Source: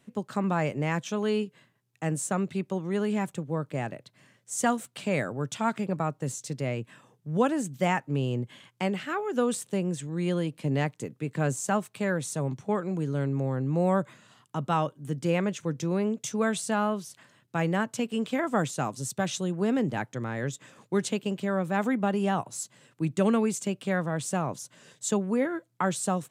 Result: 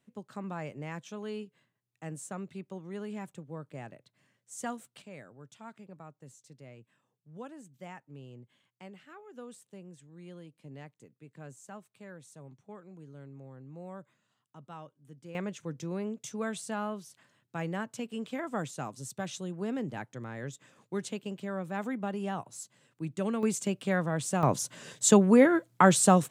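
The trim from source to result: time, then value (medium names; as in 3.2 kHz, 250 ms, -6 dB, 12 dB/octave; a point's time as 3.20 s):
-11.5 dB
from 5.02 s -20 dB
from 15.35 s -8 dB
from 23.43 s -1 dB
from 24.43 s +7 dB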